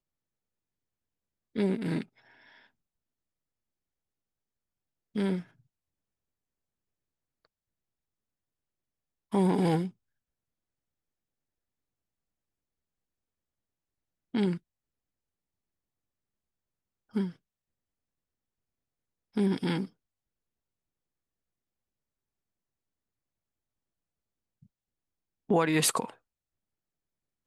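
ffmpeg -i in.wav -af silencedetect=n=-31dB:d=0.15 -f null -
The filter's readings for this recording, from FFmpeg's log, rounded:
silence_start: 0.00
silence_end: 1.56 | silence_duration: 1.56
silence_start: 2.02
silence_end: 5.16 | silence_duration: 3.14
silence_start: 5.39
silence_end: 9.34 | silence_duration: 3.95
silence_start: 9.87
silence_end: 14.35 | silence_duration: 4.48
silence_start: 14.56
silence_end: 17.16 | silence_duration: 2.60
silence_start: 17.28
silence_end: 19.37 | silence_duration: 2.09
silence_start: 19.84
silence_end: 25.50 | silence_duration: 5.66
silence_start: 26.05
silence_end: 27.46 | silence_duration: 1.42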